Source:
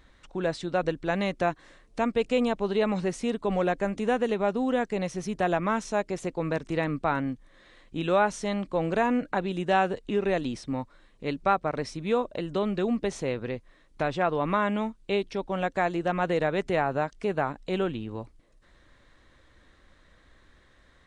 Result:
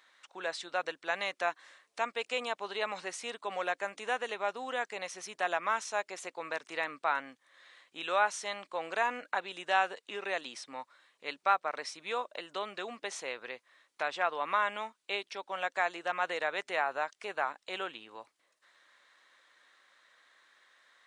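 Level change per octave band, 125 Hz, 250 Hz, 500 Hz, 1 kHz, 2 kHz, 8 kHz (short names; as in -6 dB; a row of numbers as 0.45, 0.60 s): under -25 dB, -22.0 dB, -10.5 dB, -3.5 dB, -0.5 dB, 0.0 dB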